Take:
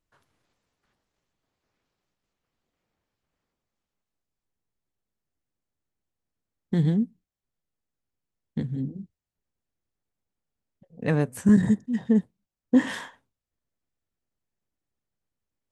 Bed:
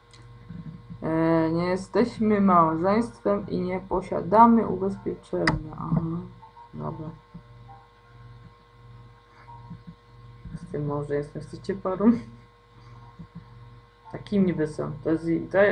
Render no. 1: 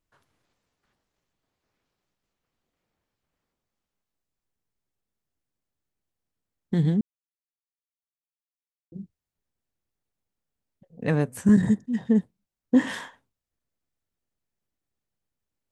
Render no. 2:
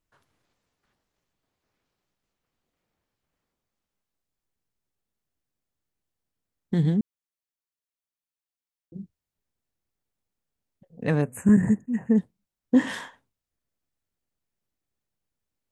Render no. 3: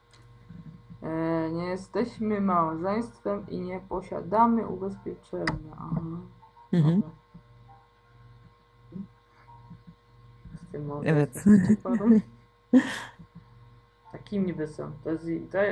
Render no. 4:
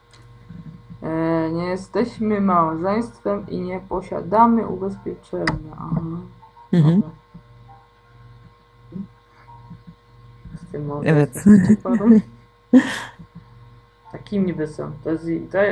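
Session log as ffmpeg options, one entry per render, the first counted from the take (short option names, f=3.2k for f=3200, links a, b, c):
-filter_complex "[0:a]asplit=3[a][b][c];[a]atrim=end=7.01,asetpts=PTS-STARTPTS,afade=t=out:st=7.006:d=0.004:c=hsin[d];[b]atrim=start=7.01:end=8.92,asetpts=PTS-STARTPTS,volume=0[e];[c]atrim=start=8.92,asetpts=PTS-STARTPTS,afade=t=in:d=0.004:c=hsin[f];[d][e][f]concat=n=3:v=0:a=1"
-filter_complex "[0:a]asplit=3[a][b][c];[a]afade=t=out:st=11.21:d=0.02[d];[b]asuperstop=centerf=4300:order=20:qfactor=1.2,afade=t=in:st=11.21:d=0.02,afade=t=out:st=12.16:d=0.02[e];[c]afade=t=in:st=12.16:d=0.02[f];[d][e][f]amix=inputs=3:normalize=0"
-filter_complex "[1:a]volume=-6dB[a];[0:a][a]amix=inputs=2:normalize=0"
-af "volume=7.5dB,alimiter=limit=-2dB:level=0:latency=1"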